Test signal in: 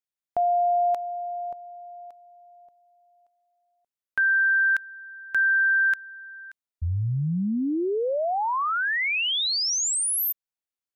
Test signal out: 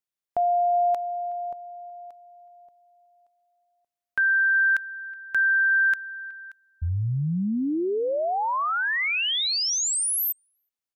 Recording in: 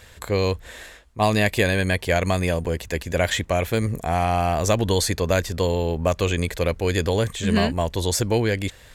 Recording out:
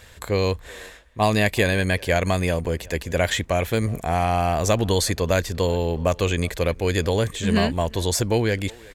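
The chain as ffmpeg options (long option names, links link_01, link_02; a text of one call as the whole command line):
ffmpeg -i in.wav -filter_complex "[0:a]asplit=2[link_01][link_02];[link_02]adelay=370,highpass=300,lowpass=3400,asoftclip=type=hard:threshold=-15dB,volume=-22dB[link_03];[link_01][link_03]amix=inputs=2:normalize=0" out.wav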